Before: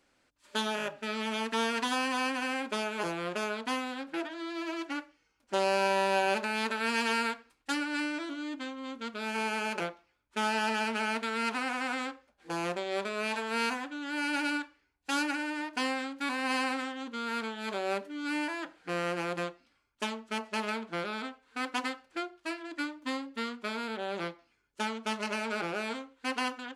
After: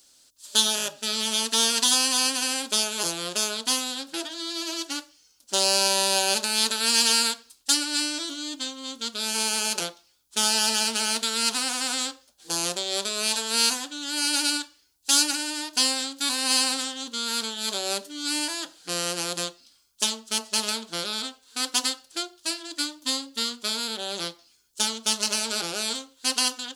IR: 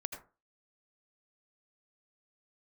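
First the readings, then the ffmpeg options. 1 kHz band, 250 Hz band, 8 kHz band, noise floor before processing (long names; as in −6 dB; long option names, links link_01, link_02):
0.0 dB, 0.0 dB, +22.0 dB, −73 dBFS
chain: -af "aexciter=amount=8.3:drive=6.8:freq=3300"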